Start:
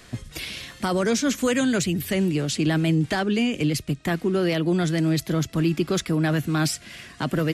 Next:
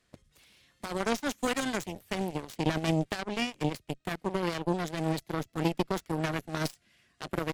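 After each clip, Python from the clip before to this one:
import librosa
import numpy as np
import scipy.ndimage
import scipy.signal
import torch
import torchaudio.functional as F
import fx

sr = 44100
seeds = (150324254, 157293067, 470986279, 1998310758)

y = fx.cheby_harmonics(x, sr, harmonics=(3,), levels_db=(-9,), full_scale_db=-11.5)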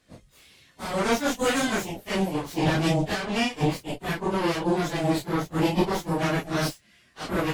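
y = fx.phase_scramble(x, sr, seeds[0], window_ms=100)
y = y * 10.0 ** (6.5 / 20.0)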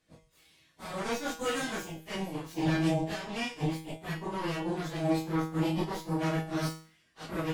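y = fx.comb_fb(x, sr, f0_hz=160.0, decay_s=0.44, harmonics='all', damping=0.0, mix_pct=80)
y = y * 10.0 ** (1.5 / 20.0)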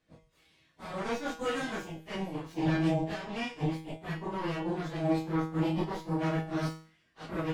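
y = fx.lowpass(x, sr, hz=3000.0, slope=6)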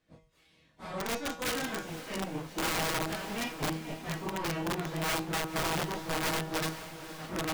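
y = (np.mod(10.0 ** (26.0 / 20.0) * x + 1.0, 2.0) - 1.0) / 10.0 ** (26.0 / 20.0)
y = fx.echo_diffused(y, sr, ms=508, feedback_pct=47, wet_db=-12.0)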